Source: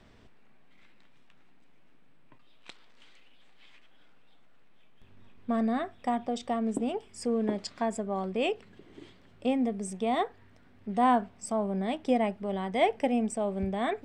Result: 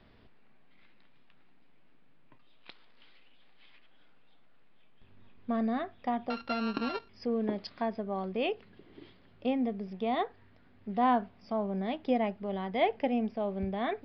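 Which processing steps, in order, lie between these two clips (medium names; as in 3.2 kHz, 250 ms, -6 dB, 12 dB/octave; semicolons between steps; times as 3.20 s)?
6.30–7.09 s: sorted samples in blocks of 32 samples; resampled via 11.025 kHz; trim -2.5 dB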